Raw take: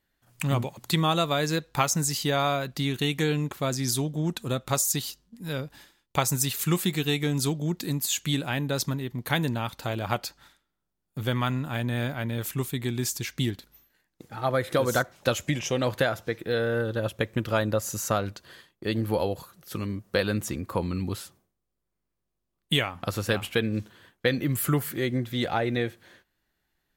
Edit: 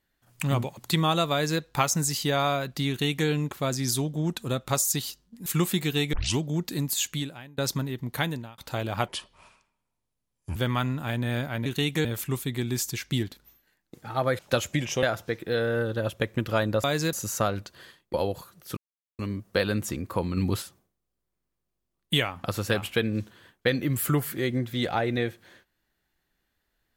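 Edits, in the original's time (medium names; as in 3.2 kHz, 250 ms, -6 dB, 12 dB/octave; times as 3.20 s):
1.32–1.61 s: copy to 17.83 s
2.89–3.28 s: copy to 12.32 s
5.46–6.58 s: delete
7.25 s: tape start 0.25 s
8.20–8.70 s: fade out quadratic, to -22.5 dB
9.25–9.70 s: fade out
10.20–11.22 s: speed 69%
14.66–15.13 s: delete
15.77–16.02 s: delete
18.84–19.15 s: delete
19.78 s: insert silence 0.42 s
20.96–21.21 s: gain +4.5 dB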